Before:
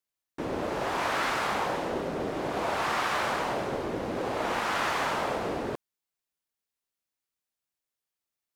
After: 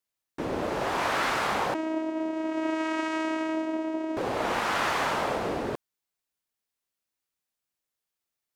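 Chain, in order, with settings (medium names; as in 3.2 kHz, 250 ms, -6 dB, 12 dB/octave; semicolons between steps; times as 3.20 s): 1.74–4.17 s: vocoder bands 4, saw 318 Hz; trim +1.5 dB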